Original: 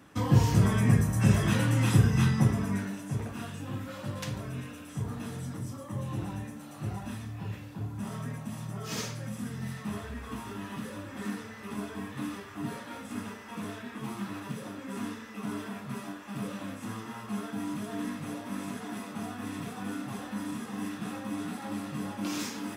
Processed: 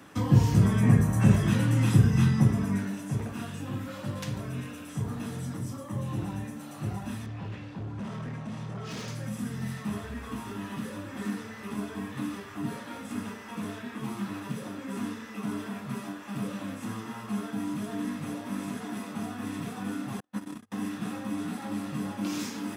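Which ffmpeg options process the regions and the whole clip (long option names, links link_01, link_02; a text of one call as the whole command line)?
ffmpeg -i in.wav -filter_complex "[0:a]asettb=1/sr,asplit=3[link_01][link_02][link_03];[link_01]atrim=end=0.834[link_04];[link_02]atrim=start=0.83:end=1.36,asetpts=PTS-STARTPTS,afade=type=in:duration=0.004:curve=qsin,afade=type=out:start_time=0.526:duration=0.004:curve=qsin,equalizer=frequency=830:width=0.57:gain=5.5,bandreject=frequency=5200:width=13[link_05];[link_03]atrim=start=1.356[link_06];[link_04][link_05]acrossfade=duration=0.004:curve1=hsin:curve2=qsin[link_07];[link_07][link_06]acrossfade=duration=0.004:curve1=qsin:curve2=hsin,asettb=1/sr,asplit=3[link_08][link_09][link_10];[link_08]atrim=end=7.264[link_11];[link_09]atrim=start=7.26:end=9.08,asetpts=PTS-STARTPTS,afade=type=in:duration=0.004:curve=qsin,afade=type=out:start_time=1.816:duration=0.004:curve=qsin,lowpass=4700,asoftclip=type=hard:threshold=-35.5dB[link_12];[link_10]atrim=start=9.076[link_13];[link_11][link_12]acrossfade=duration=0.004:curve1=hsin:curve2=qsin[link_14];[link_14][link_13]acrossfade=duration=0.004:curve1=qsin:curve2=hsin,asettb=1/sr,asplit=3[link_15][link_16][link_17];[link_15]atrim=end=20.204[link_18];[link_16]atrim=start=20.2:end=20.72,asetpts=PTS-STARTPTS,afade=type=in:duration=0.004:curve=qsin,afade=type=out:start_time=0.516:duration=0.004:curve=qsin,agate=range=-45dB:threshold=-35dB:ratio=16:release=100:detection=peak,bandreject=frequency=50:width_type=h:width=6,bandreject=frequency=100:width_type=h:width=6[link_19];[link_17]atrim=start=20.716[link_20];[link_18][link_19]acrossfade=duration=0.004:curve1=hsin:curve2=qsin[link_21];[link_21][link_20]acrossfade=duration=0.004:curve1=qsin:curve2=hsin,lowshelf=frequency=110:gain=-7.5,acrossover=split=290[link_22][link_23];[link_23]acompressor=threshold=-53dB:ratio=1.5[link_24];[link_22][link_24]amix=inputs=2:normalize=0,volume=5.5dB" out.wav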